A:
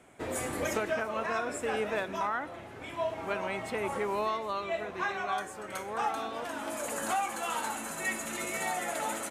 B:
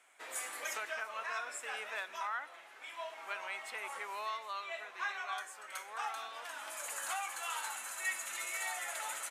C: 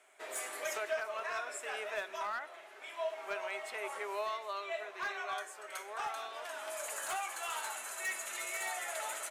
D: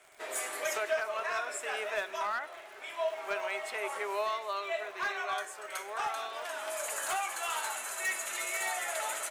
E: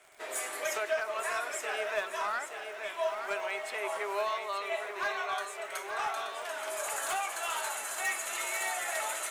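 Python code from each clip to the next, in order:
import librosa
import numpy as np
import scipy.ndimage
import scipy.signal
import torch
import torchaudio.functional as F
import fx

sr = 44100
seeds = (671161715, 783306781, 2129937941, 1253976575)

y1 = scipy.signal.sosfilt(scipy.signal.butter(2, 1200.0, 'highpass', fs=sr, output='sos'), x)
y1 = y1 * 10.0 ** (-2.5 / 20.0)
y2 = np.clip(y1, -10.0 ** (-32.0 / 20.0), 10.0 ** (-32.0 / 20.0))
y2 = fx.small_body(y2, sr, hz=(400.0, 620.0), ring_ms=60, db=13)
y3 = fx.dmg_crackle(y2, sr, seeds[0], per_s=120.0, level_db=-50.0)
y3 = y3 * 10.0 ** (4.5 / 20.0)
y4 = fx.echo_feedback(y3, sr, ms=877, feedback_pct=34, wet_db=-7.5)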